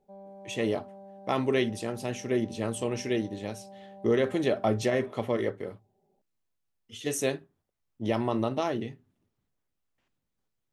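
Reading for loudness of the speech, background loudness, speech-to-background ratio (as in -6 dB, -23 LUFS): -30.0 LUFS, -48.5 LUFS, 18.5 dB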